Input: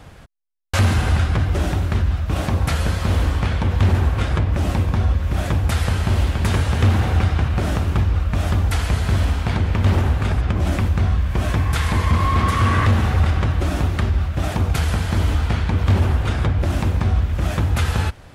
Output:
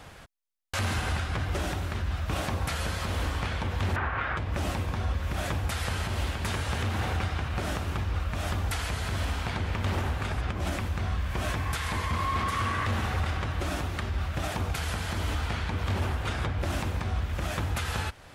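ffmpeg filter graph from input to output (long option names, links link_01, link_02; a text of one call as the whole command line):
ffmpeg -i in.wav -filter_complex "[0:a]asettb=1/sr,asplit=3[link_01][link_02][link_03];[link_01]atrim=end=3.964[link_04];[link_02]atrim=start=3.96:end=4.37,asetpts=PTS-STARTPTS,afade=type=in:duration=0.004:curve=qsin,afade=type=out:start_time=0.406:duration=0.004:curve=qsin,lowpass=2500,equalizer=frequency=1500:width=0.65:gain=13.5[link_05];[link_03]atrim=start=4.366[link_06];[link_04][link_05]acrossfade=duration=0.004:curve1=hsin:curve2=qsin[link_07];[link_07][link_06]acrossfade=duration=0.004:curve1=qsin:curve2=hsin,lowshelf=frequency=440:gain=-8.5,alimiter=limit=-20dB:level=0:latency=1:release=361" out.wav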